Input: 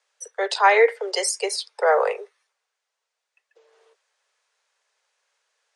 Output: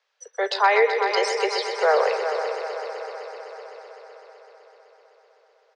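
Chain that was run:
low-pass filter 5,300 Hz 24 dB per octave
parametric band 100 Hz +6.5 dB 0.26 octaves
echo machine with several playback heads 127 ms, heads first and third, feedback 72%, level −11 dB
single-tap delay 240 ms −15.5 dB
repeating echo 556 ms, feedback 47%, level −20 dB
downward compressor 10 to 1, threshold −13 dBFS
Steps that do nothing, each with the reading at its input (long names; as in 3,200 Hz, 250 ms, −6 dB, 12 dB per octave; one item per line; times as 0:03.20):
parametric band 100 Hz: nothing at its input below 340 Hz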